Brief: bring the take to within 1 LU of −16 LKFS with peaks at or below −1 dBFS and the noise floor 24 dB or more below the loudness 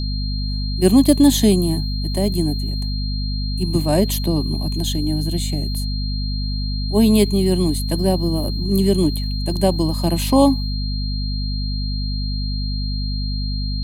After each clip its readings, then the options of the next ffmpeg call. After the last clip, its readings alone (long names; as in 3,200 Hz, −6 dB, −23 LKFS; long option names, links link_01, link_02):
mains hum 50 Hz; hum harmonics up to 250 Hz; level of the hum −20 dBFS; interfering tone 4,200 Hz; level of the tone −30 dBFS; integrated loudness −20.0 LKFS; sample peak −1.5 dBFS; target loudness −16.0 LKFS
→ -af "bandreject=frequency=50:width_type=h:width=4,bandreject=frequency=100:width_type=h:width=4,bandreject=frequency=150:width_type=h:width=4,bandreject=frequency=200:width_type=h:width=4,bandreject=frequency=250:width_type=h:width=4"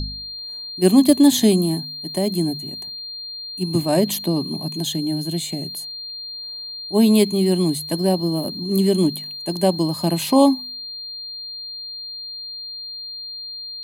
mains hum none found; interfering tone 4,200 Hz; level of the tone −30 dBFS
→ -af "bandreject=frequency=4200:width=30"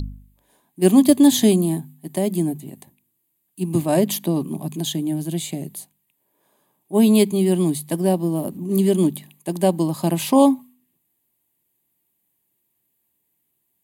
interfering tone none found; integrated loudness −19.5 LKFS; sample peak −1.0 dBFS; target loudness −16.0 LKFS
→ -af "volume=3.5dB,alimiter=limit=-1dB:level=0:latency=1"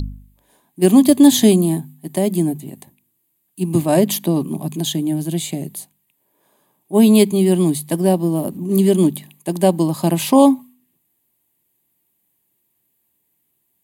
integrated loudness −16.5 LKFS; sample peak −1.0 dBFS; background noise floor −68 dBFS